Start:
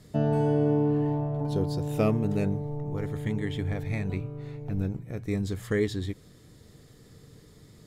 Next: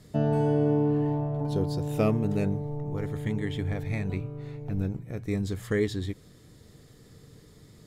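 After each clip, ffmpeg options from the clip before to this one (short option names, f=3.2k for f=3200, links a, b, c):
-af anull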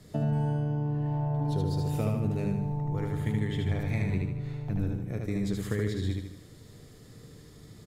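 -filter_complex "[0:a]acrossover=split=140[a][b];[b]acompressor=threshold=-31dB:ratio=6[c];[a][c]amix=inputs=2:normalize=0,asplit=2[d][e];[e]aecho=0:1:76|152|228|304|380|456:0.708|0.333|0.156|0.0735|0.0345|0.0162[f];[d][f]amix=inputs=2:normalize=0"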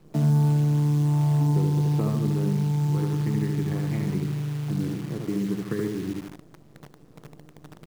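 -af "adynamicsmooth=sensitivity=3.5:basefreq=1.2k,highpass=f=140:w=0.5412,highpass=f=140:w=1.3066,equalizer=f=150:t=q:w=4:g=9,equalizer=f=330:t=q:w=4:g=7,equalizer=f=590:t=q:w=4:g=-6,equalizer=f=1.1k:t=q:w=4:g=6,lowpass=f=2.1k:w=0.5412,lowpass=f=2.1k:w=1.3066,acrusher=bits=8:dc=4:mix=0:aa=0.000001,volume=2dB"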